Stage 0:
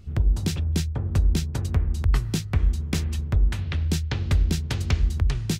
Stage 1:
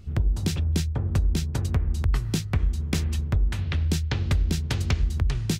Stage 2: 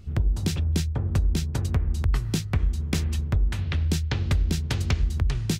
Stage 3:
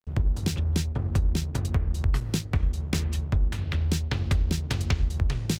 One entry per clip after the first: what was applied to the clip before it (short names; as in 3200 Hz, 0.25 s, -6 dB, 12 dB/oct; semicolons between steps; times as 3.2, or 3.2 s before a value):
compressor 3:1, threshold -20 dBFS, peak gain reduction 5 dB; gain +1 dB
nothing audible
crossover distortion -39.5 dBFS